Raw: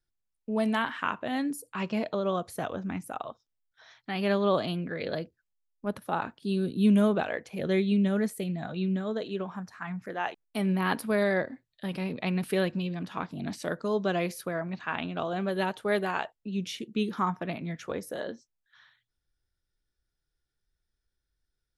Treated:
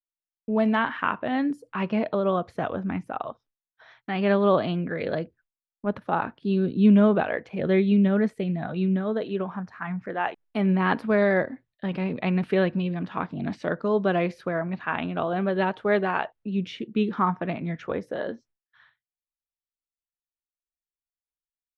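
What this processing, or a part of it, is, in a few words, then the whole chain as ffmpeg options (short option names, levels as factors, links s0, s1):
hearing-loss simulation: -af "lowpass=2500,agate=range=0.0224:threshold=0.00141:ratio=3:detection=peak,volume=1.78"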